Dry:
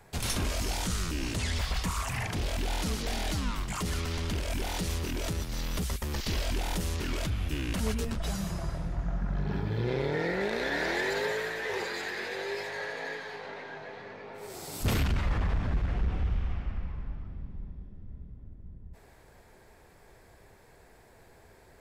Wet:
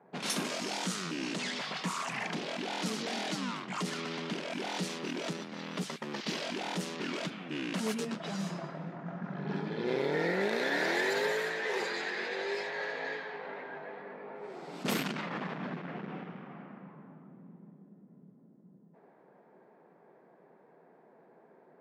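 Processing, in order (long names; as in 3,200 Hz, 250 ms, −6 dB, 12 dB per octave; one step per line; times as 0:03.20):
linear-phase brick-wall high-pass 150 Hz
low-pass that shuts in the quiet parts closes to 930 Hz, open at −28 dBFS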